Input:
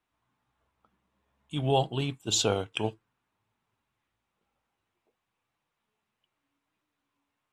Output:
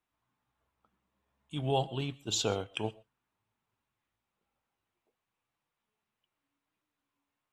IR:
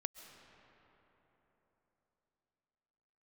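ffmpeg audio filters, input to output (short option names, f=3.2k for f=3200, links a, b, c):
-filter_complex "[0:a]asettb=1/sr,asplit=3[a][b][c];[a]atrim=end=1.894[d];[b]atrim=start=1.89:end=2.73,asetpts=PTS-STARTPTS,afade=t=in:d=0.004:c=qsin,afade=t=out:st=0.836:d=0.004:c=qsin,equalizer=f=9.2k:w=2.5:g=-6[e];[c]atrim=start=2.726[f];[d][e]acrossfade=d=0.004:c1=hsin:c2=qsin[g];[g][f]acrossfade=d=0.004:c1=qsin:c2=hsin[h];[1:a]atrim=start_sample=2205,afade=t=out:st=0.18:d=0.01,atrim=end_sample=8379,asetrate=43218,aresample=44100[i];[h][i]afir=irnorm=-1:irlink=0,volume=-2dB"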